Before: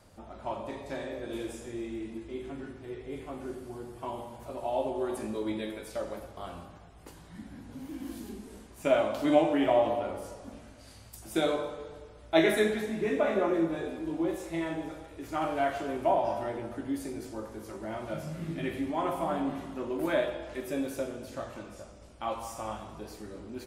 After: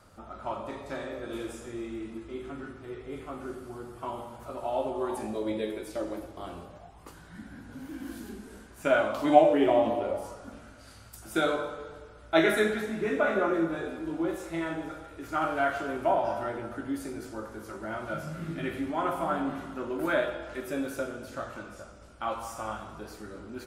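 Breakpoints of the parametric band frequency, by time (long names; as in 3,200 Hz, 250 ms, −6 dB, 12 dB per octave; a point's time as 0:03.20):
parametric band +11.5 dB 0.33 octaves
0:04.90 1,300 Hz
0:05.90 320 Hz
0:06.50 320 Hz
0:07.19 1,500 Hz
0:09.06 1,500 Hz
0:09.88 230 Hz
0:10.38 1,400 Hz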